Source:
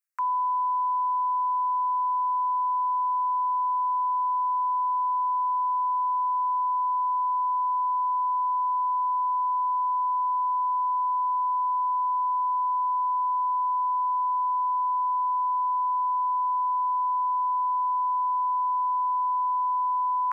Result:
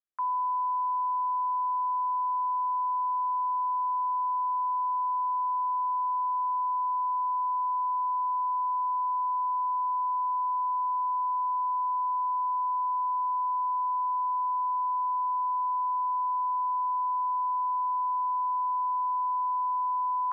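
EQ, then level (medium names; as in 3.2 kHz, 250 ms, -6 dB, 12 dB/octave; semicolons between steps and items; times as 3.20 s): low-pass 1 kHz 12 dB/octave; hum notches 60/120/180/240/300/360/420/480/540 Hz; 0.0 dB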